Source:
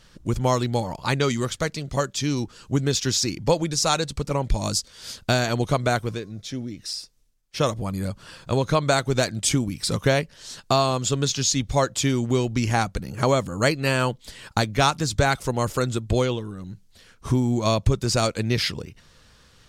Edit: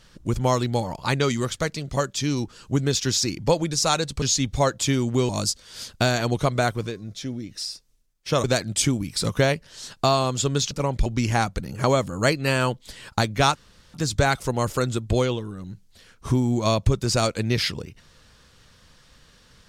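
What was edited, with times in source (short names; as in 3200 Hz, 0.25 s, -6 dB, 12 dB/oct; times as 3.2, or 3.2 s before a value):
4.22–4.57 swap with 11.38–12.45
7.72–9.11 cut
14.94 insert room tone 0.39 s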